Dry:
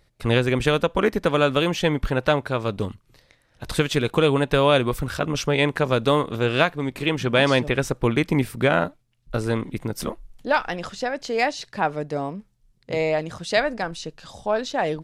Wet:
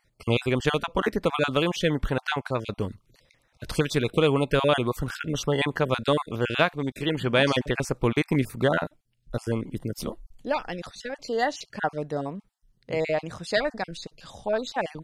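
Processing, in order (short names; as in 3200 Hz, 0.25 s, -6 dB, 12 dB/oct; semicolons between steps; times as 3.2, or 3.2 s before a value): random spectral dropouts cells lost 26%; 8.79–11.18 bell 1300 Hz -6 dB 1.7 oct; gain -2.5 dB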